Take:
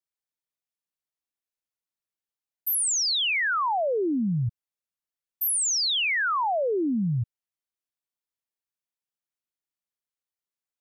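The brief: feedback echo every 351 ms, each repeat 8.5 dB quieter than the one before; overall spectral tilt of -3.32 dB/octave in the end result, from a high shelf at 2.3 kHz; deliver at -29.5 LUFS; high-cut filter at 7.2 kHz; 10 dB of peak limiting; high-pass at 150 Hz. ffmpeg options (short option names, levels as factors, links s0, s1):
-af "highpass=150,lowpass=7200,highshelf=f=2300:g=4.5,alimiter=level_in=1.78:limit=0.0631:level=0:latency=1,volume=0.562,aecho=1:1:351|702|1053|1404:0.376|0.143|0.0543|0.0206,volume=1.19"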